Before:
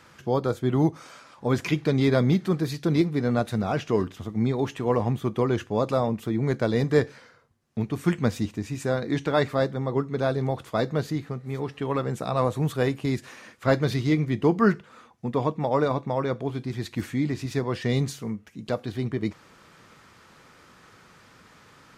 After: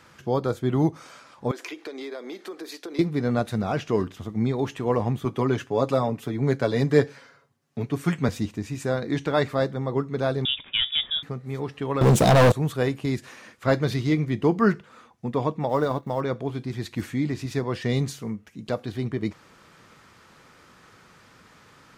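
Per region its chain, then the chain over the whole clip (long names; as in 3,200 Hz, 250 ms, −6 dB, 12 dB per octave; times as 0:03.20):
0:01.51–0:02.99: Butterworth high-pass 310 Hz + downward compressor 5 to 1, threshold −33 dBFS
0:05.25–0:08.29: high-pass filter 120 Hz + comb filter 7.2 ms, depth 57%
0:10.45–0:11.23: log-companded quantiser 6 bits + voice inversion scrambler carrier 3,600 Hz
0:12.01–0:12.52: flat-topped bell 1,600 Hz −9 dB 1.1 octaves + leveller curve on the samples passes 5
0:15.69–0:16.21: mu-law and A-law mismatch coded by A + notch filter 2,400 Hz, Q 6
whole clip: no processing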